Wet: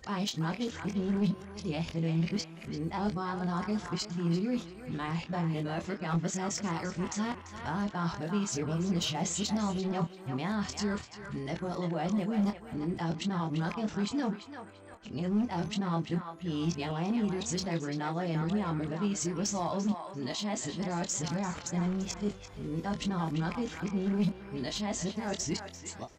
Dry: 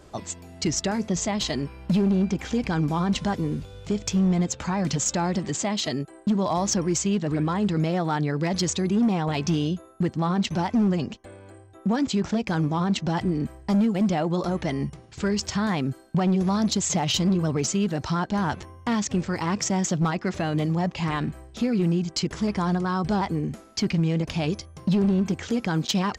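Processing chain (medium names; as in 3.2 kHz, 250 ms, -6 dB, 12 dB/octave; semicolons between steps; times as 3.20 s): reverse the whole clip; doubling 24 ms -7 dB; band-passed feedback delay 342 ms, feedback 44%, band-pass 1.5 kHz, level -5 dB; trim -9 dB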